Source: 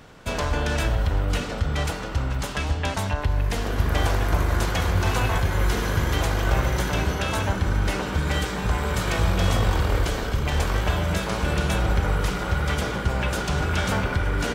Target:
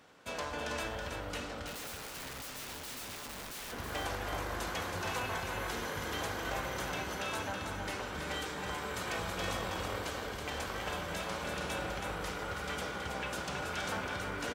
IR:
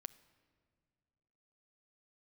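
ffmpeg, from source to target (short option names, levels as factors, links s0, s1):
-filter_complex "[0:a]highpass=f=350:p=1[s0];[1:a]atrim=start_sample=2205,asetrate=79380,aresample=44100[s1];[s0][s1]afir=irnorm=-1:irlink=0,asettb=1/sr,asplit=3[s2][s3][s4];[s2]atrim=end=1.664[s5];[s3]atrim=start=1.66:end=3.72,asetpts=PTS-STARTPTS,afade=t=in:d=0.004:c=qsin,afade=t=out:st=2.056:d=0.004:c=qsin,aeval=exprs='(mod(94.4*val(0)+1,2)-1)/94.4':c=same[s6];[s4]atrim=start=3.716[s7];[s5][s6]acrossfade=d=0.004:c1=hsin:c2=qsin[s8];[s8][s7]acrossfade=d=0.004:c1=qsin:c2=hsin,aecho=1:1:324:0.531"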